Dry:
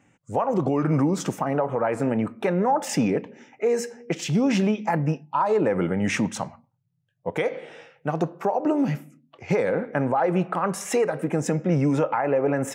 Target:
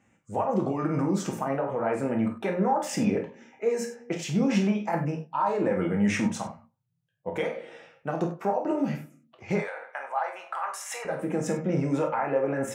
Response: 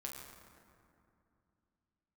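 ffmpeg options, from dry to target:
-filter_complex "[0:a]asettb=1/sr,asplit=3[a][b][c];[a]atrim=end=9.584[d];[b]atrim=start=9.58:end=11.05,asetpts=PTS-STARTPTS,afade=t=in:d=0.004:c=qsin,afade=t=out:st=1.466:d=0.004:c=qsin,highpass=f=760:w=0.5412,highpass=f=760:w=1.3066[e];[c]atrim=start=11.046[f];[d][e]acrossfade=d=0.004:c1=hsin:c2=qsin[g];[g][f]acrossfade=d=0.004:c1=qsin:c2=hsin[h];[1:a]atrim=start_sample=2205,atrim=end_sample=4410[i];[h][i]afir=irnorm=-1:irlink=0"

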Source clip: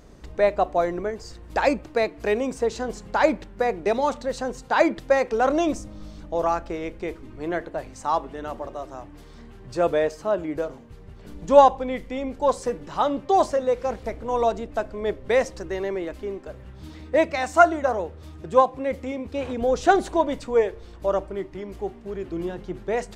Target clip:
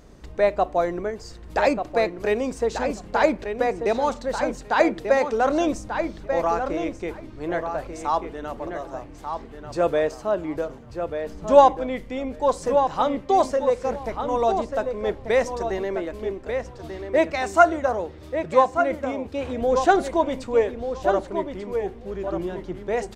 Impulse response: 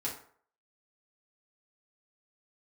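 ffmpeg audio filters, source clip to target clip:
-filter_complex "[0:a]asplit=2[a][b];[b]adelay=1189,lowpass=f=3.8k:p=1,volume=-7dB,asplit=2[c][d];[d]adelay=1189,lowpass=f=3.8k:p=1,volume=0.15,asplit=2[e][f];[f]adelay=1189,lowpass=f=3.8k:p=1,volume=0.15[g];[a][c][e][g]amix=inputs=4:normalize=0"

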